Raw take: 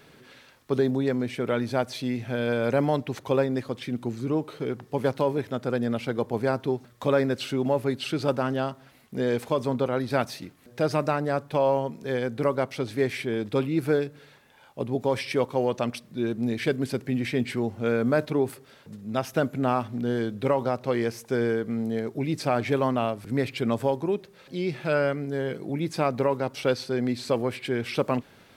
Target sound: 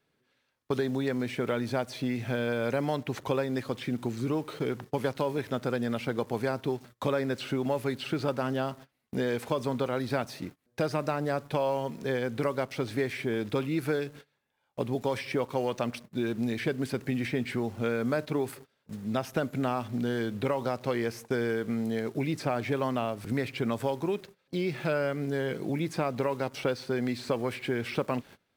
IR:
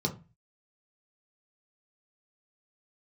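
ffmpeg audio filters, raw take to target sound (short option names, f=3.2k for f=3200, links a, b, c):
-filter_complex "[0:a]agate=range=-22dB:threshold=-44dB:ratio=16:detection=peak,acrossover=split=1100|2200[a][b][c];[a]acompressor=threshold=-30dB:ratio=4[d];[b]acompressor=threshold=-42dB:ratio=4[e];[c]acompressor=threshold=-47dB:ratio=4[f];[d][e][f]amix=inputs=3:normalize=0,asplit=2[g][h];[h]acrusher=bits=7:mix=0:aa=0.000001,volume=-9dB[i];[g][i]amix=inputs=2:normalize=0"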